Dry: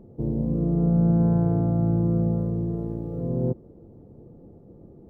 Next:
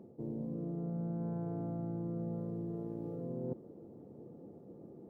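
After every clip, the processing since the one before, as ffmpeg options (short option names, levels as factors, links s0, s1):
-af "highpass=180,areverse,acompressor=threshold=0.0158:ratio=4,areverse,volume=0.794"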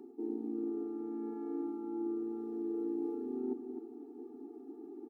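-filter_complex "[0:a]lowshelf=f=170:g=8.5,asplit=2[s0][s1];[s1]adelay=256.6,volume=0.398,highshelf=f=4000:g=-5.77[s2];[s0][s2]amix=inputs=2:normalize=0,afftfilt=real='re*eq(mod(floor(b*sr/1024/230),2),1)':imag='im*eq(mod(floor(b*sr/1024/230),2),1)':win_size=1024:overlap=0.75,volume=1.78"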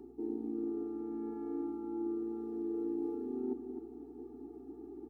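-af "aeval=exprs='val(0)+0.000562*(sin(2*PI*60*n/s)+sin(2*PI*2*60*n/s)/2+sin(2*PI*3*60*n/s)/3+sin(2*PI*4*60*n/s)/4+sin(2*PI*5*60*n/s)/5)':c=same"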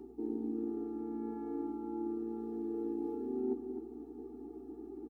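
-filter_complex "[0:a]asplit=2[s0][s1];[s1]adelay=13,volume=0.376[s2];[s0][s2]amix=inputs=2:normalize=0,volume=1.12"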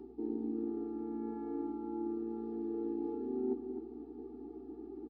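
-af "aresample=11025,aresample=44100"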